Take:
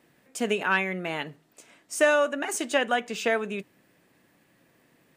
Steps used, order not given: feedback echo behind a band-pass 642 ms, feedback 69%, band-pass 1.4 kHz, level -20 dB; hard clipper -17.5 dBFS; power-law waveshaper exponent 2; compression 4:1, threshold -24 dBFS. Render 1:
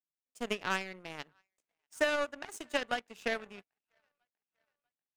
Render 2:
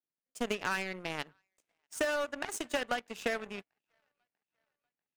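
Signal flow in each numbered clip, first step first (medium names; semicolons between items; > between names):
feedback echo behind a band-pass > power-law waveshaper > compression > hard clipper; hard clipper > compression > feedback echo behind a band-pass > power-law waveshaper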